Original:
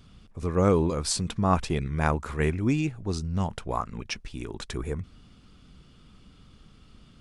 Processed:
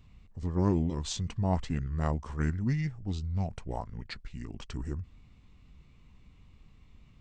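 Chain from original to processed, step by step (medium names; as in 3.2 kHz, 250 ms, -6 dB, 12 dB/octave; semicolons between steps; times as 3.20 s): formant shift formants -4 st; bass shelf 210 Hz +7 dB; trim -8.5 dB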